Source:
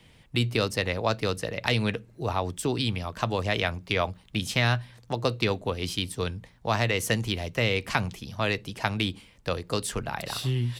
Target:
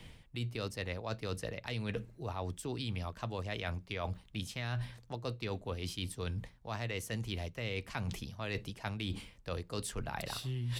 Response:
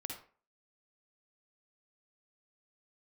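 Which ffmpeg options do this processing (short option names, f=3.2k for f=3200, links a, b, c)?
-af "lowshelf=f=63:g=10.5,areverse,acompressor=threshold=-37dB:ratio=10,areverse,volume=2dB"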